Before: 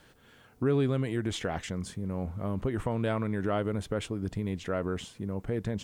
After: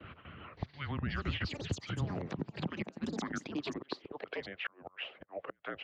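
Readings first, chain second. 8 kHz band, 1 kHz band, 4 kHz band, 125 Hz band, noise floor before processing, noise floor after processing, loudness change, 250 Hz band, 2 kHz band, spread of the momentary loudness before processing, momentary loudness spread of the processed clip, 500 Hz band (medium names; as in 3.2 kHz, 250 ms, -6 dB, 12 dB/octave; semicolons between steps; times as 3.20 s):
-7.0 dB, -6.0 dB, -1.0 dB, -8.0 dB, -59 dBFS, -67 dBFS, -7.5 dB, -8.5 dB, 0.0 dB, 7 LU, 9 LU, -12.0 dB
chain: gate with hold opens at -51 dBFS; peaking EQ 1.2 kHz -6 dB 0.24 oct; mistuned SSB -280 Hz 250–3200 Hz; dynamic bell 110 Hz, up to -6 dB, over -49 dBFS, Q 4.1; compression 6:1, threshold -34 dBFS, peak gain reduction 10.5 dB; harmonic tremolo 2.9 Hz, depth 50%, crossover 510 Hz; harmonic-percussive split harmonic -16 dB; inverted gate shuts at -35 dBFS, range -30 dB; ever faster or slower copies 569 ms, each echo +7 st, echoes 2; high-pass sweep 80 Hz -> 530 Hz, 1.42–4.53 s; three bands compressed up and down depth 40%; trim +10 dB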